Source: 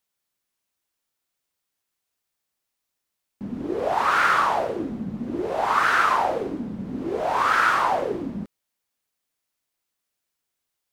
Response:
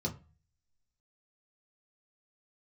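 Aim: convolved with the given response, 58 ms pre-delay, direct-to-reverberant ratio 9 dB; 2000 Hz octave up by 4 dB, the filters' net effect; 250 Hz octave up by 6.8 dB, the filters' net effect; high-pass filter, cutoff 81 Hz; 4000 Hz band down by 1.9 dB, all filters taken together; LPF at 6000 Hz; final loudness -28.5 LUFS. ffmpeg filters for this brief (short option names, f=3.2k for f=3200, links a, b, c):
-filter_complex "[0:a]highpass=81,lowpass=6k,equalizer=f=250:t=o:g=8.5,equalizer=f=2k:t=o:g=6.5,equalizer=f=4k:t=o:g=-5,asplit=2[a][b];[1:a]atrim=start_sample=2205,adelay=58[c];[b][c]afir=irnorm=-1:irlink=0,volume=-12dB[d];[a][d]amix=inputs=2:normalize=0,volume=-9.5dB"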